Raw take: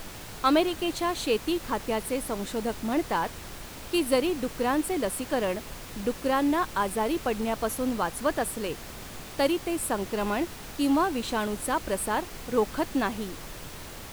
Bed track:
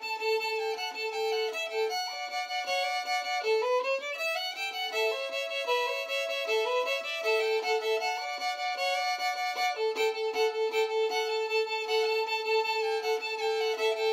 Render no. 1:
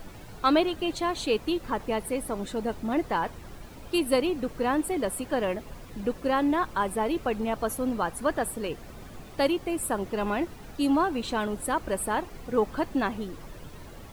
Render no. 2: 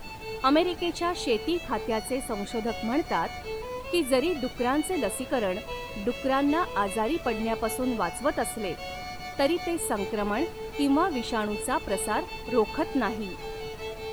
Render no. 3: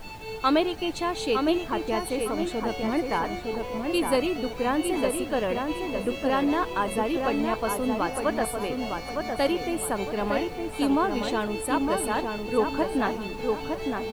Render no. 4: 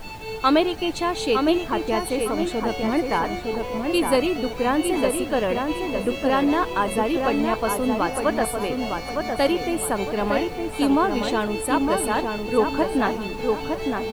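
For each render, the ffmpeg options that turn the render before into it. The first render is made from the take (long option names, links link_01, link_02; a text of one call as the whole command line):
ffmpeg -i in.wav -af "afftdn=noise_reduction=11:noise_floor=-42" out.wav
ffmpeg -i in.wav -i bed.wav -filter_complex "[1:a]volume=-8.5dB[link_01];[0:a][link_01]amix=inputs=2:normalize=0" out.wav
ffmpeg -i in.wav -filter_complex "[0:a]asplit=2[link_01][link_02];[link_02]adelay=910,lowpass=frequency=2000:poles=1,volume=-4dB,asplit=2[link_03][link_04];[link_04]adelay=910,lowpass=frequency=2000:poles=1,volume=0.4,asplit=2[link_05][link_06];[link_06]adelay=910,lowpass=frequency=2000:poles=1,volume=0.4,asplit=2[link_07][link_08];[link_08]adelay=910,lowpass=frequency=2000:poles=1,volume=0.4,asplit=2[link_09][link_10];[link_10]adelay=910,lowpass=frequency=2000:poles=1,volume=0.4[link_11];[link_01][link_03][link_05][link_07][link_09][link_11]amix=inputs=6:normalize=0" out.wav
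ffmpeg -i in.wav -af "volume=4dB" out.wav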